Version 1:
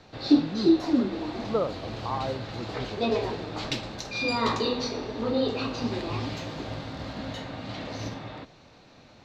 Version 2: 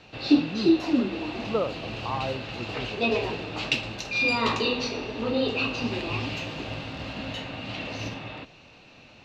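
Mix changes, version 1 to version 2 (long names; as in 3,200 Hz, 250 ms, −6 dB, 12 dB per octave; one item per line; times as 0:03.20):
speech: add high-pass filter 110 Hz 24 dB per octave
master: add parametric band 2,700 Hz +14.5 dB 0.31 octaves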